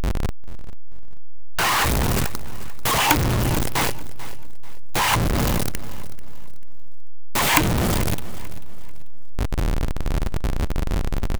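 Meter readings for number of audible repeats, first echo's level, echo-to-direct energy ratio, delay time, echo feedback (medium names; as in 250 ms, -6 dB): 2, -16.5 dB, -16.0 dB, 440 ms, 32%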